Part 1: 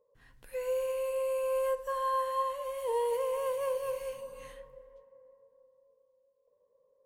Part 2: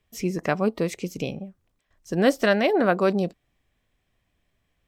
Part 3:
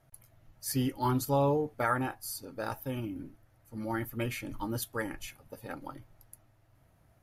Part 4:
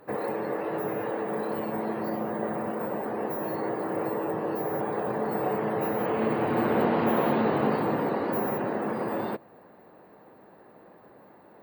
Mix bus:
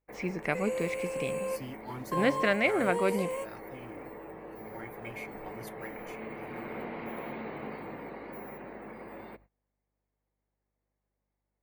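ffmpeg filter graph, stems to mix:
ffmpeg -i stem1.wav -i stem2.wav -i stem3.wav -i stem4.wav -filter_complex "[0:a]lowpass=11000,equalizer=frequency=8000:width=2.9:gain=13,volume=-3dB[link_01];[1:a]acrossover=split=4900[link_02][link_03];[link_03]acompressor=threshold=-53dB:ratio=4:attack=1:release=60[link_04];[link_02][link_04]amix=inputs=2:normalize=0,volume=-8dB,asplit=2[link_05][link_06];[2:a]acrusher=bits=7:mode=log:mix=0:aa=0.000001,adelay=850,volume=-13dB[link_07];[3:a]aeval=exprs='val(0)+0.00501*(sin(2*PI*50*n/s)+sin(2*PI*2*50*n/s)/2+sin(2*PI*3*50*n/s)/3+sin(2*PI*4*50*n/s)/4+sin(2*PI*5*50*n/s)/5)':channel_layout=same,volume=-15.5dB[link_08];[link_06]apad=whole_len=311165[link_09];[link_01][link_09]sidechaingate=range=-33dB:threshold=-53dB:ratio=16:detection=peak[link_10];[link_10][link_05][link_07][link_08]amix=inputs=4:normalize=0,agate=range=-23dB:threshold=-56dB:ratio=16:detection=peak,equalizer=frequency=2200:width_type=o:width=0.34:gain=14" out.wav

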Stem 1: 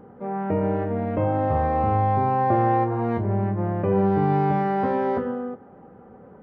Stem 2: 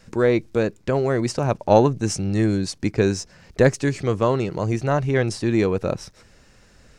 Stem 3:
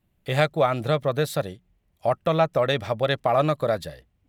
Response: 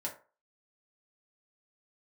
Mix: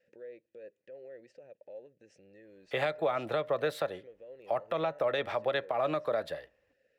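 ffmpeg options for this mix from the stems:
-filter_complex "[1:a]acompressor=threshold=-23dB:ratio=6,alimiter=limit=-22dB:level=0:latency=1:release=178,asplit=3[link_01][link_02][link_03];[link_01]bandpass=frequency=530:width_type=q:width=8,volume=0dB[link_04];[link_02]bandpass=frequency=1840:width_type=q:width=8,volume=-6dB[link_05];[link_03]bandpass=frequency=2480:width_type=q:width=8,volume=-9dB[link_06];[link_04][link_05][link_06]amix=inputs=3:normalize=0,volume=-8dB[link_07];[2:a]acrossover=split=350 3200:gain=0.126 1 0.178[link_08][link_09][link_10];[link_08][link_09][link_10]amix=inputs=3:normalize=0,acrossover=split=350|3000[link_11][link_12][link_13];[link_12]acompressor=threshold=-25dB:ratio=6[link_14];[link_11][link_14][link_13]amix=inputs=3:normalize=0,adelay=2450,volume=0.5dB,asplit=2[link_15][link_16];[link_16]volume=-18.5dB[link_17];[3:a]atrim=start_sample=2205[link_18];[link_17][link_18]afir=irnorm=-1:irlink=0[link_19];[link_07][link_15][link_19]amix=inputs=3:normalize=0,alimiter=limit=-20dB:level=0:latency=1:release=158"

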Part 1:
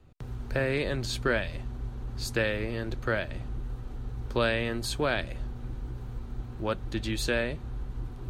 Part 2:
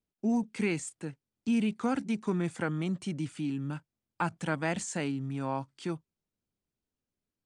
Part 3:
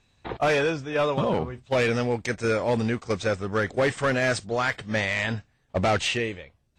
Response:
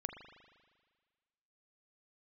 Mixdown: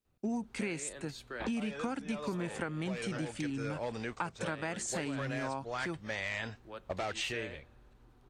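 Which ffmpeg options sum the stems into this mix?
-filter_complex "[0:a]acrossover=split=210[link_01][link_02];[link_01]acompressor=threshold=-39dB:ratio=6[link_03];[link_03][link_02]amix=inputs=2:normalize=0,adelay=50,volume=-16dB,asplit=2[link_04][link_05];[link_05]volume=-12dB[link_06];[1:a]volume=2dB,asplit=2[link_07][link_08];[2:a]lowshelf=frequency=130:gain=10,alimiter=limit=-15dB:level=0:latency=1:release=398,acrossover=split=310|3000[link_09][link_10][link_11];[link_09]acompressor=threshold=-33dB:ratio=6[link_12];[link_12][link_10][link_11]amix=inputs=3:normalize=0,adelay=1150,volume=-5.5dB[link_13];[link_08]apad=whole_len=349797[link_14];[link_13][link_14]sidechaincompress=threshold=-35dB:ratio=8:attack=49:release=493[link_15];[3:a]atrim=start_sample=2205[link_16];[link_06][link_16]afir=irnorm=-1:irlink=0[link_17];[link_04][link_07][link_15][link_17]amix=inputs=4:normalize=0,lowshelf=frequency=360:gain=-5,acompressor=threshold=-32dB:ratio=6"

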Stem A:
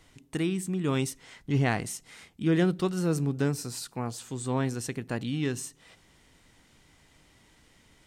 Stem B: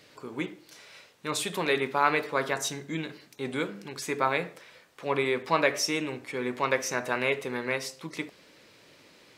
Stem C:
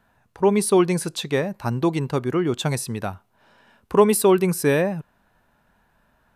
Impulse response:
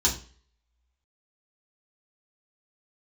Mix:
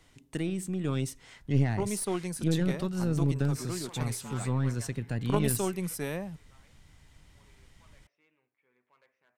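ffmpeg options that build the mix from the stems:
-filter_complex "[0:a]acrossover=split=260[link_01][link_02];[link_02]acompressor=threshold=-31dB:ratio=3[link_03];[link_01][link_03]amix=inputs=2:normalize=0,volume=-2.5dB,asplit=2[link_04][link_05];[1:a]lowpass=frequency=2800:width=0.5412,lowpass=frequency=2800:width=1.3066,asoftclip=type=hard:threshold=-21dB,highpass=frequency=520:poles=1,adelay=2300,volume=-17dB[link_06];[2:a]highpass=frequency=170:width=0.5412,highpass=frequency=170:width=1.3066,bass=frequency=250:gain=4,treble=frequency=4000:gain=7,adelay=1350,volume=-15.5dB[link_07];[link_05]apad=whole_len=515001[link_08];[link_06][link_08]sidechaingate=range=-19dB:threshold=-55dB:ratio=16:detection=peak[link_09];[link_04][link_09][link_07]amix=inputs=3:normalize=0,asubboost=boost=3.5:cutoff=150,aeval=exprs='0.188*(cos(1*acos(clip(val(0)/0.188,-1,1)))-cos(1*PI/2))+0.0841*(cos(2*acos(clip(val(0)/0.188,-1,1)))-cos(2*PI/2))':channel_layout=same"

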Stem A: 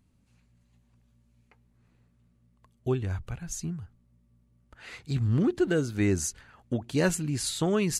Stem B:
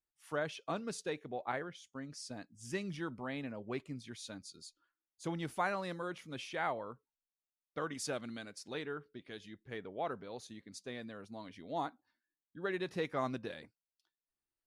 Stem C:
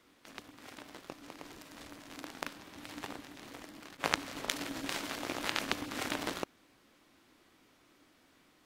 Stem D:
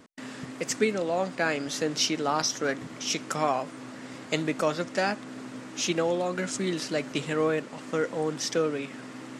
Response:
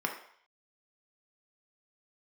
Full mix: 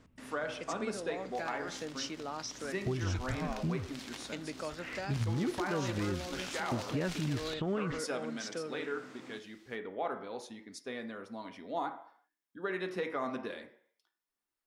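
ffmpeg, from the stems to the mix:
-filter_complex "[0:a]lowpass=frequency=3000:width=0.5412,lowpass=frequency=3000:width=1.3066,acompressor=threshold=-27dB:ratio=6,volume=1.5dB[link_01];[1:a]volume=-1.5dB,asplit=3[link_02][link_03][link_04];[link_02]atrim=end=2.06,asetpts=PTS-STARTPTS,afade=type=out:start_time=2.056:duration=0.004:curve=hsin[link_05];[link_03]atrim=start=2.06:end=2.57,asetpts=PTS-STARTPTS,volume=0[link_06];[link_04]atrim=start=2.57,asetpts=PTS-STARTPTS,afade=type=in:duration=0.004:curve=hsin[link_07];[link_05][link_06][link_07]concat=n=3:v=0:a=1,asplit=2[link_08][link_09];[link_09]volume=-4.5dB[link_10];[2:a]asoftclip=type=tanh:threshold=-21dB,equalizer=frequency=5200:width_type=o:width=2.3:gain=12,adelay=1100,volume=-6.5dB[link_11];[3:a]lowpass=8500,volume=-9.5dB[link_12];[link_08][link_11][link_12]amix=inputs=3:normalize=0,acompressor=threshold=-43dB:ratio=1.5,volume=0dB[link_13];[4:a]atrim=start_sample=2205[link_14];[link_10][link_14]afir=irnorm=-1:irlink=0[link_15];[link_01][link_13][link_15]amix=inputs=3:normalize=0,alimiter=level_in=0.5dB:limit=-24dB:level=0:latency=1:release=131,volume=-0.5dB"

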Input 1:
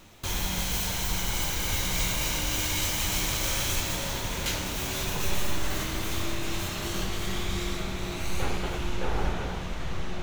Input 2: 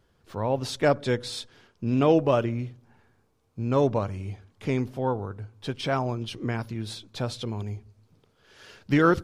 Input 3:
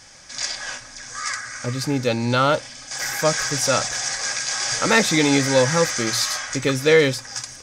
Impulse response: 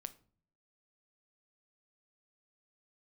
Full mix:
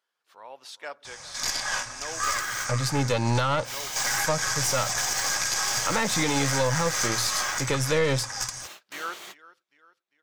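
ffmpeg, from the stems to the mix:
-filter_complex "[0:a]highpass=580,acontrast=53,adelay=2000,volume=-12dB[link_01];[1:a]highpass=1000,volume=-8.5dB,asplit=3[link_02][link_03][link_04];[link_03]volume=-18dB[link_05];[2:a]equalizer=frequency=125:width_type=o:width=1:gain=4,equalizer=frequency=250:width_type=o:width=1:gain=-5,equalizer=frequency=1000:width_type=o:width=1:gain=8,equalizer=frequency=8000:width_type=o:width=1:gain=4,acrossover=split=350[link_06][link_07];[link_07]acompressor=threshold=-19dB:ratio=3[link_08];[link_06][link_08]amix=inputs=2:normalize=0,aeval=exprs='0.562*(cos(1*acos(clip(val(0)/0.562,-1,1)))-cos(1*PI/2))+0.0562*(cos(6*acos(clip(val(0)/0.562,-1,1)))-cos(6*PI/2))':channel_layout=same,adelay=1050,volume=-0.5dB[link_09];[link_04]apad=whole_len=539311[link_10];[link_01][link_10]sidechaingate=range=-49dB:threshold=-58dB:ratio=16:detection=peak[link_11];[link_05]aecho=0:1:398|796|1194|1592|1990|2388:1|0.46|0.212|0.0973|0.0448|0.0206[link_12];[link_11][link_02][link_09][link_12]amix=inputs=4:normalize=0,alimiter=limit=-13.5dB:level=0:latency=1:release=142"

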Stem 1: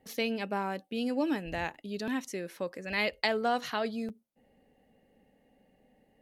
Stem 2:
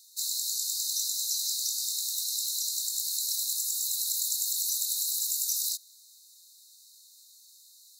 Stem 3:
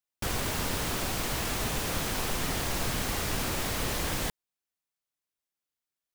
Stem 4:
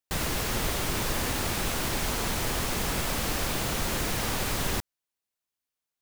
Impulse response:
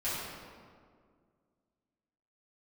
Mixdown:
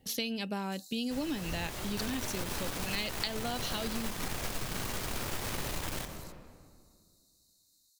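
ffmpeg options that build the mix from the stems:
-filter_complex "[0:a]equalizer=frequency=2600:width=2:gain=8.5,aexciter=amount=11.9:drive=5.8:freq=3600,bass=frequency=250:gain=11,treble=frequency=4000:gain=-14,volume=-2.5dB[link_01];[1:a]acompressor=threshold=-38dB:ratio=4,adelay=550,volume=-13.5dB[link_02];[2:a]aeval=exprs='0.133*(cos(1*acos(clip(val(0)/0.133,-1,1)))-cos(1*PI/2))+0.0335*(cos(4*acos(clip(val(0)/0.133,-1,1)))-cos(4*PI/2))':channel_layout=same,adelay=1750,volume=-4.5dB,asplit=2[link_03][link_04];[link_04]volume=-13.5dB[link_05];[3:a]adelay=1000,volume=-13.5dB,asplit=2[link_06][link_07];[link_07]volume=-7.5dB[link_08];[4:a]atrim=start_sample=2205[link_09];[link_05][link_08]amix=inputs=2:normalize=0[link_10];[link_10][link_09]afir=irnorm=-1:irlink=0[link_11];[link_01][link_02][link_03][link_06][link_11]amix=inputs=5:normalize=0,acompressor=threshold=-31dB:ratio=6"

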